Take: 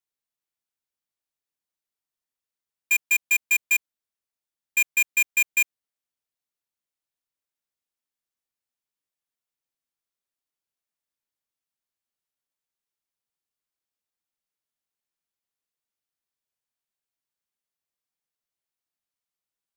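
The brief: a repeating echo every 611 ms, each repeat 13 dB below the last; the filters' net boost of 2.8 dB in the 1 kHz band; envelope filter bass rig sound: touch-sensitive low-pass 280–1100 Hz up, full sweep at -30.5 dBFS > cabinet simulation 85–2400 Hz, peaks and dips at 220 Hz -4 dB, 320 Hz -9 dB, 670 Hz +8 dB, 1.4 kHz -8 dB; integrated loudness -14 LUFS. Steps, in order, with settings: peaking EQ 1 kHz +3 dB; feedback delay 611 ms, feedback 22%, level -13 dB; touch-sensitive low-pass 280–1100 Hz up, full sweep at -30.5 dBFS; cabinet simulation 85–2400 Hz, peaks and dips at 220 Hz -4 dB, 320 Hz -9 dB, 670 Hz +8 dB, 1.4 kHz -8 dB; trim +23 dB

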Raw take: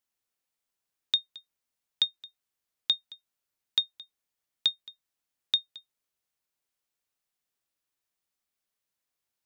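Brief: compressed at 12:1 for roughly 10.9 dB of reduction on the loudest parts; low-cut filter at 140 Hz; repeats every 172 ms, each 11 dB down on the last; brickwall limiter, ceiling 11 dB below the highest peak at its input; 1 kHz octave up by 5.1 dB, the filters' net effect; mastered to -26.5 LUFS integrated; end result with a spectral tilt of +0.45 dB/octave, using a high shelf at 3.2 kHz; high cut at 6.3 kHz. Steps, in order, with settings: high-pass 140 Hz; low-pass 6.3 kHz; peaking EQ 1 kHz +7 dB; treble shelf 3.2 kHz -4.5 dB; compression 12:1, threshold -34 dBFS; peak limiter -26.5 dBFS; feedback delay 172 ms, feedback 28%, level -11 dB; trim +24 dB

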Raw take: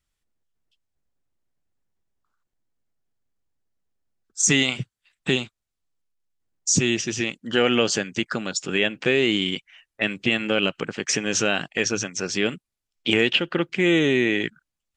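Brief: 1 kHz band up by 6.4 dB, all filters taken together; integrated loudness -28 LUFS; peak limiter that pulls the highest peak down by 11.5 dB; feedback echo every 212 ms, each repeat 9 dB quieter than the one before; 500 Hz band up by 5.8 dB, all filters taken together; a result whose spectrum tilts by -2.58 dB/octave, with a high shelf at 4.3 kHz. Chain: peaking EQ 500 Hz +6 dB; peaking EQ 1 kHz +7 dB; treble shelf 4.3 kHz +5.5 dB; peak limiter -11 dBFS; feedback delay 212 ms, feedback 35%, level -9 dB; trim -5 dB

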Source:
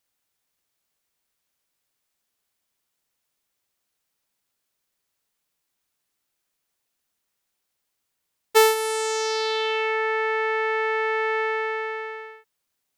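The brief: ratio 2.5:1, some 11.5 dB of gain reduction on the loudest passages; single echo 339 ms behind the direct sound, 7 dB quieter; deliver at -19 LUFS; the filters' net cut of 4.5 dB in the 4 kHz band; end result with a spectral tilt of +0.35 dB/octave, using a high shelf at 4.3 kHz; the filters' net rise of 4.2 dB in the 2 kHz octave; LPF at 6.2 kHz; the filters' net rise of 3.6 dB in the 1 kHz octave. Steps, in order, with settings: low-pass 6.2 kHz; peaking EQ 1 kHz +3.5 dB; peaking EQ 2 kHz +6 dB; peaking EQ 4 kHz -4.5 dB; treble shelf 4.3 kHz -6 dB; compression 2.5:1, threshold -27 dBFS; delay 339 ms -7 dB; trim +9.5 dB

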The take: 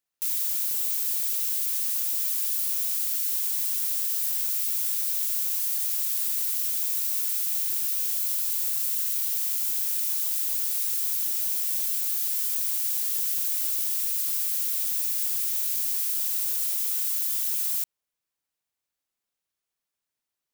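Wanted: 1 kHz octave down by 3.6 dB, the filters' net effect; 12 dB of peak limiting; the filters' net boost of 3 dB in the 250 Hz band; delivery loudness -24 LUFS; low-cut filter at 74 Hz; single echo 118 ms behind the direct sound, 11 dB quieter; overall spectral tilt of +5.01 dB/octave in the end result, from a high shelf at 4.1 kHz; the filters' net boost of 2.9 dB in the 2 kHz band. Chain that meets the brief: high-pass 74 Hz; peaking EQ 250 Hz +4.5 dB; peaking EQ 1 kHz -7.5 dB; peaking EQ 2 kHz +6.5 dB; treble shelf 4.1 kHz -4.5 dB; peak limiter -29 dBFS; delay 118 ms -11 dB; trim +11 dB

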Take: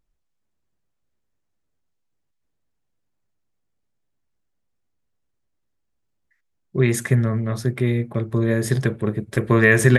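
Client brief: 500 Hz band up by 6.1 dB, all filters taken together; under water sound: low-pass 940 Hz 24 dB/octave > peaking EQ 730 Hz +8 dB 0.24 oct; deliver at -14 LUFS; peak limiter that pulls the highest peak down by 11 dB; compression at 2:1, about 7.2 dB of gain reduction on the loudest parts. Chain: peaking EQ 500 Hz +7.5 dB; compression 2:1, threshold -20 dBFS; peak limiter -16.5 dBFS; low-pass 940 Hz 24 dB/octave; peaking EQ 730 Hz +8 dB 0.24 oct; trim +13.5 dB

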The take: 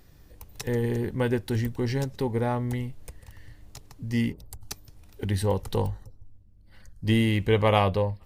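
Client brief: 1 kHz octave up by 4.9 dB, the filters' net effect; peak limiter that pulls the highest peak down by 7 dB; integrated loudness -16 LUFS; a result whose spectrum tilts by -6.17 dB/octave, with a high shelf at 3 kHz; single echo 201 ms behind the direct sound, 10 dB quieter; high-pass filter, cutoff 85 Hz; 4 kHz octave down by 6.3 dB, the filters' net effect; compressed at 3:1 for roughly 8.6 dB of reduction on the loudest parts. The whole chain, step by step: high-pass 85 Hz; peaking EQ 1 kHz +7 dB; treble shelf 3 kHz -5 dB; peaking EQ 4 kHz -6 dB; compression 3:1, threshold -25 dBFS; peak limiter -22 dBFS; delay 201 ms -10 dB; trim +17 dB

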